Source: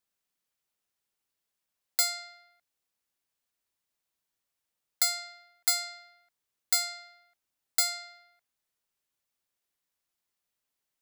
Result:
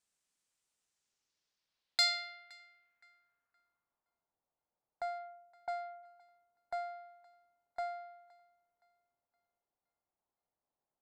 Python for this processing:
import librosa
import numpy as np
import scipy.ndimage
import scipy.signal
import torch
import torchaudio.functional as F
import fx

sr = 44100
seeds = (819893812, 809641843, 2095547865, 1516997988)

p1 = fx.env_lowpass(x, sr, base_hz=490.0, full_db=-23.5, at=(5.18, 6.02), fade=0.02)
p2 = fx.echo_thinned(p1, sr, ms=518, feedback_pct=40, hz=730.0, wet_db=-23.0)
p3 = np.clip(p2, -10.0 ** (-24.5 / 20.0), 10.0 ** (-24.5 / 20.0))
p4 = p2 + F.gain(torch.from_numpy(p3), -8.5).numpy()
p5 = fx.filter_sweep_lowpass(p4, sr, from_hz=8300.0, to_hz=810.0, start_s=0.8, end_s=4.35, q=2.0)
y = F.gain(torch.from_numpy(p5), -3.5).numpy()